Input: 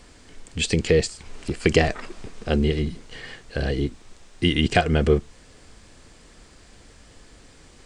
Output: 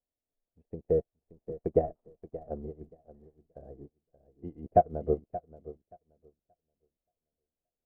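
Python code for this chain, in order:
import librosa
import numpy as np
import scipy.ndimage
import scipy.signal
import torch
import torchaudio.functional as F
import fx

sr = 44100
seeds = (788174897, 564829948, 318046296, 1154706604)

y = fx.ladder_lowpass(x, sr, hz=740.0, resonance_pct=60)
y = fx.dmg_crackle(y, sr, seeds[0], per_s=70.0, level_db=-54.0)
y = fx.echo_feedback(y, sr, ms=577, feedback_pct=47, wet_db=-6.5)
y = fx.upward_expand(y, sr, threshold_db=-46.0, expansion=2.5)
y = y * librosa.db_to_amplitude(4.0)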